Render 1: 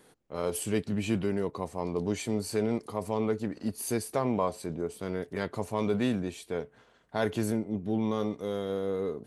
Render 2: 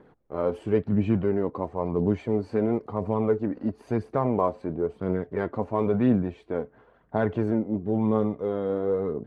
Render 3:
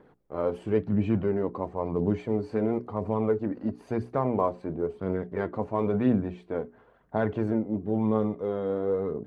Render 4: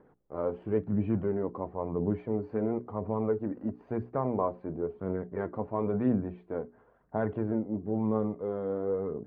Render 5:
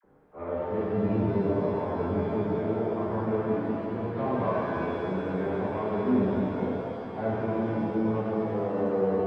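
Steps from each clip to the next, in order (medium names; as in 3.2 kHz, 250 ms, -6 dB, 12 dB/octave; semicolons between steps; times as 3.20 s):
low-pass 1.3 kHz 12 dB/octave; phaser 0.98 Hz, delay 4.1 ms, feedback 36%; trim +5 dB
hum notches 60/120/180/240/300/360/420 Hz; trim -1.5 dB
low-pass 1.7 kHz 12 dB/octave; trim -3.5 dB
Chebyshev shaper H 5 -23 dB, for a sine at -15 dBFS; phase dispersion lows, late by 44 ms, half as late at 770 Hz; pitch-shifted reverb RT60 3 s, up +7 st, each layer -8 dB, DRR -8 dB; trim -6.5 dB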